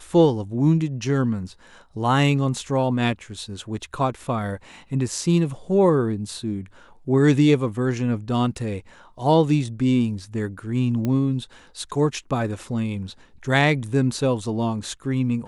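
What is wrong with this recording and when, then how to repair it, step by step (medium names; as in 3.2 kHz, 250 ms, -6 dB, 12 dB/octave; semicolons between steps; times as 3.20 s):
11.05 s: pop -14 dBFS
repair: de-click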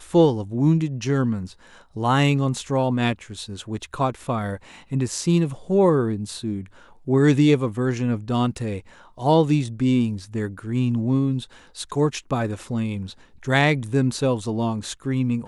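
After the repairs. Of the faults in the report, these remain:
nothing left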